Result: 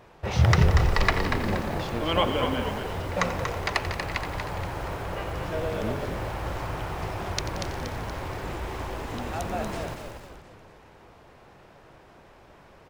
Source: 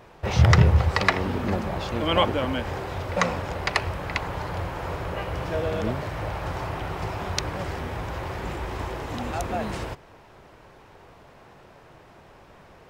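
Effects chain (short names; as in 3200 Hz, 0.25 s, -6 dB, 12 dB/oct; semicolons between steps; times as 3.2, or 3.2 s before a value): frequency-shifting echo 0.237 s, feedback 47%, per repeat -52 Hz, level -6.5 dB; lo-fi delay 89 ms, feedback 80%, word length 6-bit, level -13 dB; gain -3 dB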